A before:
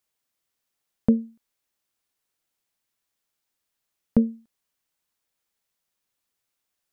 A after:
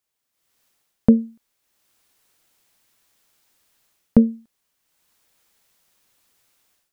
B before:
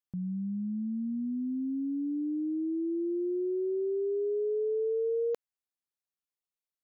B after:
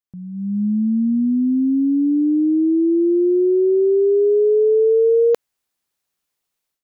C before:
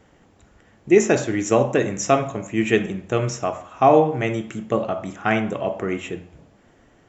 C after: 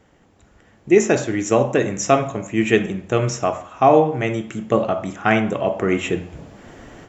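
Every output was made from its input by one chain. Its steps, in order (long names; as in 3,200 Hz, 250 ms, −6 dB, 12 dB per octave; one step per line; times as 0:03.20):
automatic gain control gain up to 16.5 dB
level −1 dB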